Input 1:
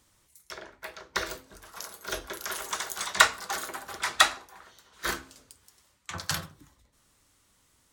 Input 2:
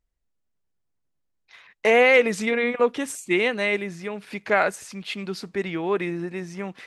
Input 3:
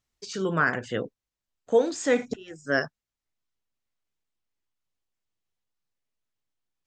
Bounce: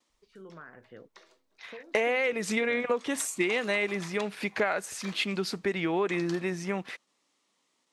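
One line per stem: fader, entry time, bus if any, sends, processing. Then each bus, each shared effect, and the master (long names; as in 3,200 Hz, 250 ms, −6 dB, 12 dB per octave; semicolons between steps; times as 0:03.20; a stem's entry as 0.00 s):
−4.0 dB, 0.00 s, bus A, no send, high-pass filter 200 Hz 24 dB per octave; noise gate with hold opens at −57 dBFS; parametric band 1,500 Hz −9.5 dB 0.25 octaves; automatic ducking −19 dB, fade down 0.85 s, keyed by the third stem
+3.0 dB, 0.10 s, no bus, no send, downward compressor 16 to 1, threshold −26 dBFS, peak gain reduction 14.5 dB
−16.0 dB, 0.00 s, bus A, no send, low-pass filter 2,000 Hz 12 dB per octave
bus A: 0.0 dB, low-pass filter 6,000 Hz 12 dB per octave; downward compressor 12 to 1, threshold −42 dBFS, peak gain reduction 23 dB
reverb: not used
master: low-shelf EQ 230 Hz −4 dB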